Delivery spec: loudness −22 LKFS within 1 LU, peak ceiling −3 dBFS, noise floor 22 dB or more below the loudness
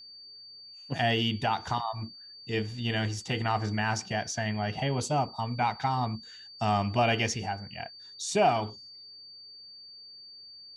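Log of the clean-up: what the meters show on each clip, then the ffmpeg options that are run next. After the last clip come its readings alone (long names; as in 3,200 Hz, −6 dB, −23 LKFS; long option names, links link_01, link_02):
interfering tone 4,600 Hz; level of the tone −46 dBFS; integrated loudness −29.5 LKFS; sample peak −13.0 dBFS; target loudness −22.0 LKFS
→ -af "bandreject=frequency=4600:width=30"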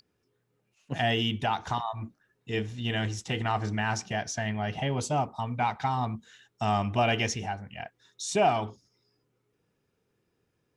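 interfering tone none found; integrated loudness −29.5 LKFS; sample peak −13.0 dBFS; target loudness −22.0 LKFS
→ -af "volume=7.5dB"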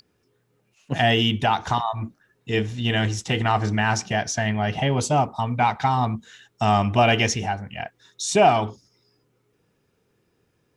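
integrated loudness −22.0 LKFS; sample peak −5.5 dBFS; background noise floor −69 dBFS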